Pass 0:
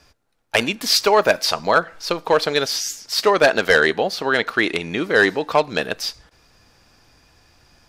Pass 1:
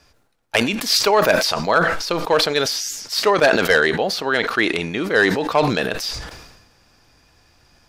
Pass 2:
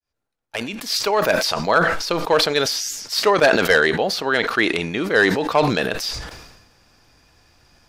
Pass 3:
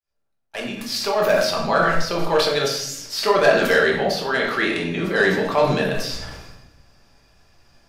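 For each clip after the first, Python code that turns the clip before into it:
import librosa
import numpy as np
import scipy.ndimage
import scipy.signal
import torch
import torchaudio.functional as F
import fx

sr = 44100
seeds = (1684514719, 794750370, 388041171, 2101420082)

y1 = fx.sustainer(x, sr, db_per_s=50.0)
y1 = F.gain(torch.from_numpy(y1), -1.0).numpy()
y2 = fx.fade_in_head(y1, sr, length_s=1.73)
y3 = fx.room_shoebox(y2, sr, seeds[0], volume_m3=190.0, walls='mixed', distance_m=1.2)
y3 = F.gain(torch.from_numpy(y3), -6.0).numpy()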